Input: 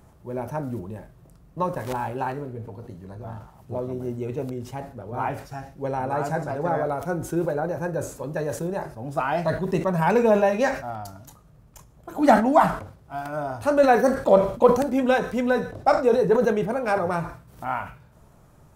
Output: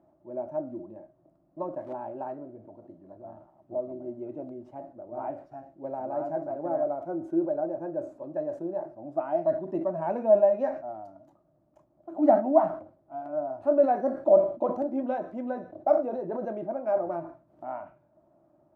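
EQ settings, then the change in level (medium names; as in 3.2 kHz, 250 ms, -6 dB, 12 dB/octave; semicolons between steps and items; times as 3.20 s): two resonant band-passes 450 Hz, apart 0.9 oct; +2.0 dB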